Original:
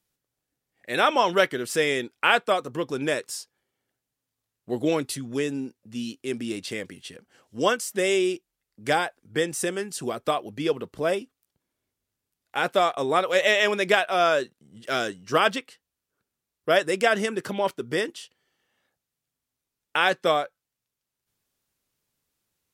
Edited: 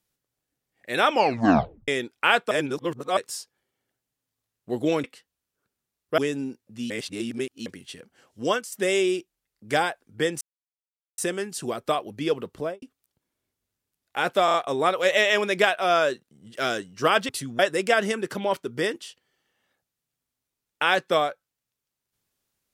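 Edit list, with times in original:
0:01.11: tape stop 0.77 s
0:02.51–0:03.17: reverse
0:05.04–0:05.34: swap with 0:15.59–0:16.73
0:06.06–0:06.82: reverse
0:07.58–0:07.88: fade out, to −9 dB
0:09.57: splice in silence 0.77 s
0:10.95–0:11.21: fade out and dull
0:12.84: stutter 0.03 s, 4 plays

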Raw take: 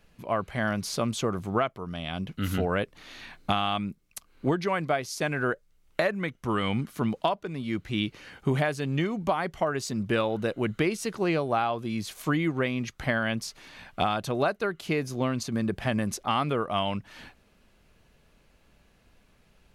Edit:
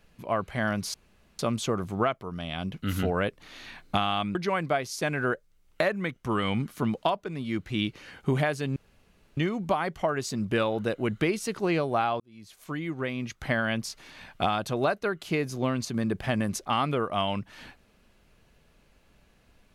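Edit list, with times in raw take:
0:00.94: splice in room tone 0.45 s
0:03.90–0:04.54: remove
0:08.95: splice in room tone 0.61 s
0:11.78–0:13.14: fade in

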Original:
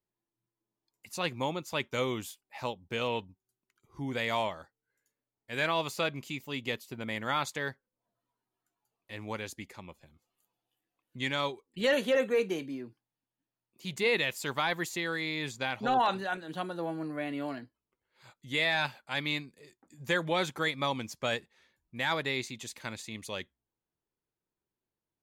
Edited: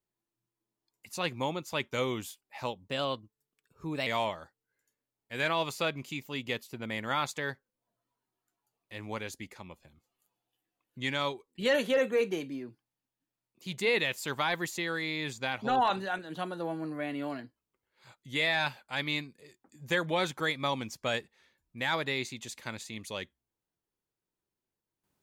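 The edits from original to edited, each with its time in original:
0:02.84–0:04.25: play speed 115%

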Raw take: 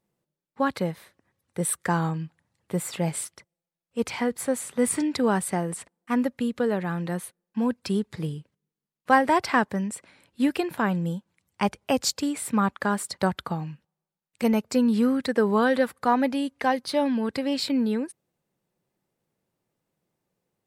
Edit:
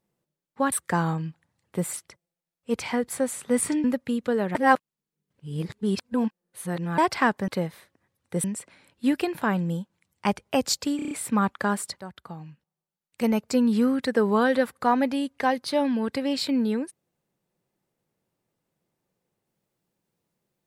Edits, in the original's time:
0:00.72–0:01.68: move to 0:09.80
0:02.89–0:03.21: remove
0:05.12–0:06.16: remove
0:06.87–0:09.30: reverse
0:12.32: stutter 0.03 s, 6 plays
0:13.21–0:14.68: fade in, from −17.5 dB

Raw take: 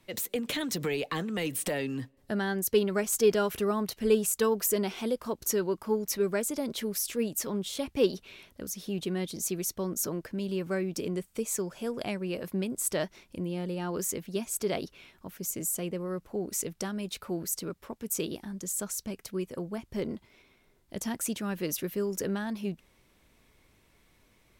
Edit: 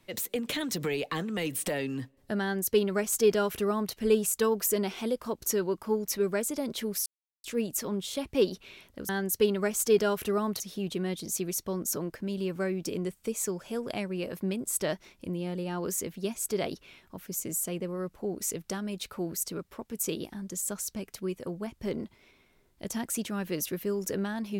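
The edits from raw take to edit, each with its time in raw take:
0:02.42–0:03.93: duplicate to 0:08.71
0:07.06: splice in silence 0.38 s

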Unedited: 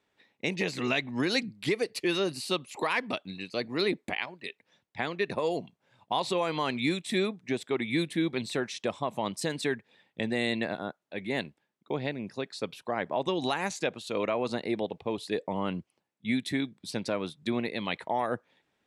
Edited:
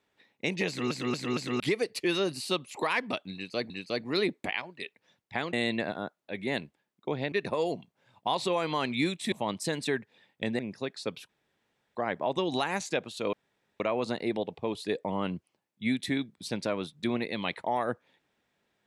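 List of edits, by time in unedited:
0:00.68: stutter in place 0.23 s, 4 plays
0:03.34–0:03.70: repeat, 2 plays
0:07.17–0:09.09: remove
0:10.36–0:12.15: move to 0:05.17
0:12.85: splice in room tone 0.66 s
0:14.23: splice in room tone 0.47 s

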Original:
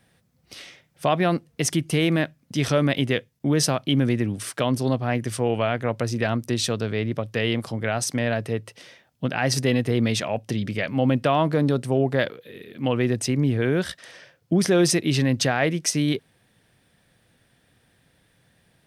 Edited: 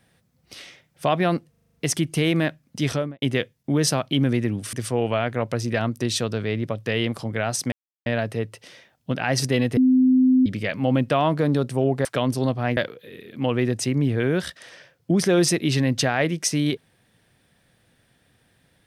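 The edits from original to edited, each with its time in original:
0:01.50: stutter 0.04 s, 7 plays
0:02.60–0:02.98: fade out and dull
0:04.49–0:05.21: move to 0:12.19
0:08.20: splice in silence 0.34 s
0:09.91–0:10.60: beep over 257 Hz −13 dBFS

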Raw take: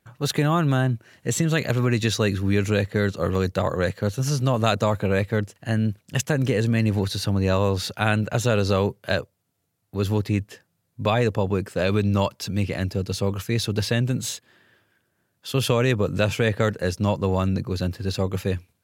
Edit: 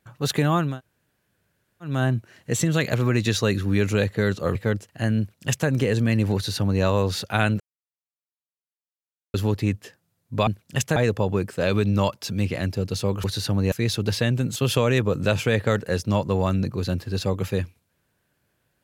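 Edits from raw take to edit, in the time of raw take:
0:00.69: splice in room tone 1.23 s, crossfade 0.24 s
0:03.32–0:05.22: remove
0:05.86–0:06.35: duplicate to 0:11.14
0:07.02–0:07.50: duplicate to 0:13.42
0:08.27–0:10.01: silence
0:14.26–0:15.49: remove

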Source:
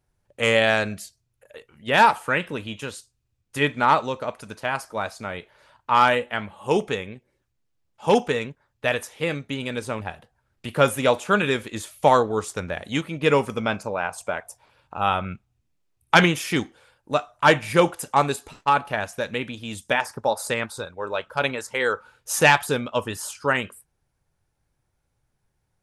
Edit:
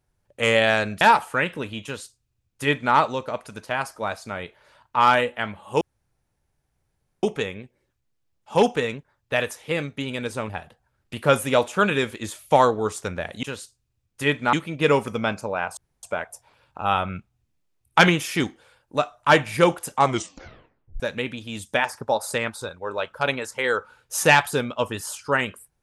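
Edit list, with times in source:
0:01.01–0:01.95: remove
0:02.78–0:03.88: duplicate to 0:12.95
0:06.75: splice in room tone 1.42 s
0:14.19: splice in room tone 0.26 s
0:18.17: tape stop 0.99 s

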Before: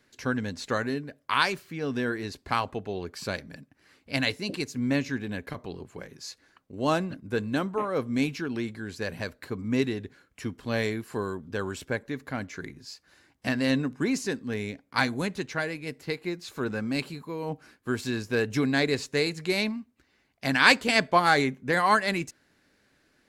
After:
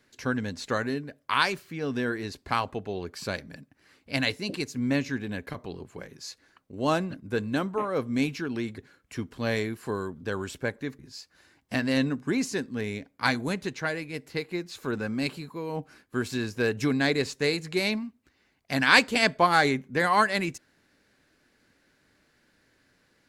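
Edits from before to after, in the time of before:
0:08.78–0:10.05: remove
0:12.26–0:12.72: remove

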